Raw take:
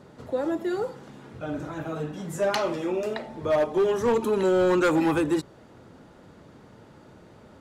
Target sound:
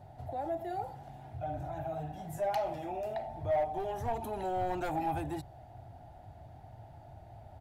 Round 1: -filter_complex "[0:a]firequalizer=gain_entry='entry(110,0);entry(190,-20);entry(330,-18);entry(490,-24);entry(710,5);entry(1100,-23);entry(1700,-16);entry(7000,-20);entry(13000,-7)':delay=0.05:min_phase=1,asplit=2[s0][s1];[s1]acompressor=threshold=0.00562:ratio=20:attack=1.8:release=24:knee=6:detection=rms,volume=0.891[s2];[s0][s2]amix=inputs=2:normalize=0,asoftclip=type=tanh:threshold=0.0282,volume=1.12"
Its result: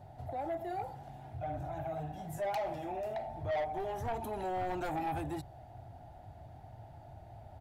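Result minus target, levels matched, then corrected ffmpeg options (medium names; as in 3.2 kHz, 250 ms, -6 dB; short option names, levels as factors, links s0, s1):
saturation: distortion +9 dB
-filter_complex "[0:a]firequalizer=gain_entry='entry(110,0);entry(190,-20);entry(330,-18);entry(490,-24);entry(710,5);entry(1100,-23);entry(1700,-16);entry(7000,-20);entry(13000,-7)':delay=0.05:min_phase=1,asplit=2[s0][s1];[s1]acompressor=threshold=0.00562:ratio=20:attack=1.8:release=24:knee=6:detection=rms,volume=0.891[s2];[s0][s2]amix=inputs=2:normalize=0,asoftclip=type=tanh:threshold=0.0668,volume=1.12"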